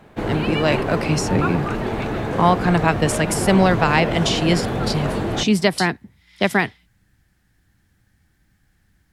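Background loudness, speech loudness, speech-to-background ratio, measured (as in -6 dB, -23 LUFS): -24.0 LUFS, -20.0 LUFS, 4.0 dB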